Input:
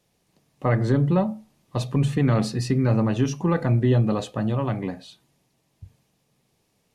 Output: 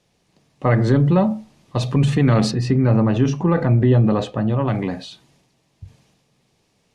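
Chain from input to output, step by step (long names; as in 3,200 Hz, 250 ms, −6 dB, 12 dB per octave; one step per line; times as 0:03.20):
high-shelf EQ 3,200 Hz +4 dB, from 0:02.51 −7.5 dB, from 0:04.68 +5 dB
transient designer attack 0 dB, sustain +5 dB
high-frequency loss of the air 63 metres
level +4.5 dB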